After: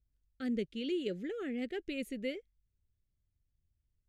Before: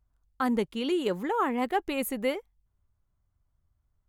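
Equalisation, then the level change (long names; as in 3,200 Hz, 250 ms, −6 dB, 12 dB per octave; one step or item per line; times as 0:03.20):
Butterworth band-reject 980 Hz, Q 0.7
low-pass filter 5,900 Hz 12 dB per octave
−6.5 dB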